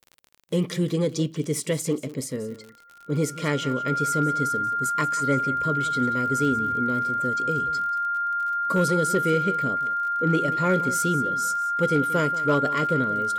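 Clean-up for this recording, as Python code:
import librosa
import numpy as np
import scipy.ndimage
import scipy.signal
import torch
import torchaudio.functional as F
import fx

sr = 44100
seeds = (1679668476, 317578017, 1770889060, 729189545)

y = fx.fix_declip(x, sr, threshold_db=-13.5)
y = fx.fix_declick_ar(y, sr, threshold=6.5)
y = fx.notch(y, sr, hz=1400.0, q=30.0)
y = fx.fix_echo_inverse(y, sr, delay_ms=183, level_db=-16.0)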